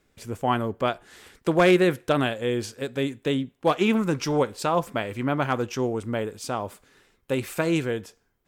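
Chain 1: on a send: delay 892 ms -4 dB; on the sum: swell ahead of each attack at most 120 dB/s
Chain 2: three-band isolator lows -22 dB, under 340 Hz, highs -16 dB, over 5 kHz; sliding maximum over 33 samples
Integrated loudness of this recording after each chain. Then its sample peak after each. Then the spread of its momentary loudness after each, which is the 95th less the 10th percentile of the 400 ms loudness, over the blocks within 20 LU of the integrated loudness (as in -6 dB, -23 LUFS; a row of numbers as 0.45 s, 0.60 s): -24.0 LUFS, -30.5 LUFS; -8.0 dBFS, -12.0 dBFS; 10 LU, 9 LU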